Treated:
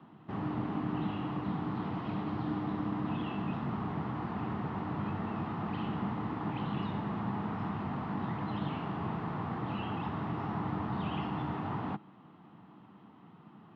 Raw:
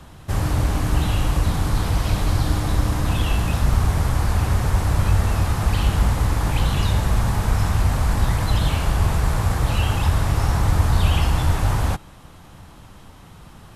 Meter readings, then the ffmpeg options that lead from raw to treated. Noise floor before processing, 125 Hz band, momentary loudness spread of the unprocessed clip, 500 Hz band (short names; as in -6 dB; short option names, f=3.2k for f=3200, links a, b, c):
-44 dBFS, -18.5 dB, 2 LU, -11.0 dB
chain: -af "highpass=f=150:w=0.5412,highpass=f=150:w=1.3066,equalizer=f=210:t=q:w=4:g=5,equalizer=f=310:t=q:w=4:g=4,equalizer=f=550:t=q:w=4:g=-10,equalizer=f=1.6k:t=q:w=4:g=-8,equalizer=f=2.3k:t=q:w=4:g=-8,lowpass=f=2.5k:w=0.5412,lowpass=f=2.5k:w=1.3066,volume=-8dB"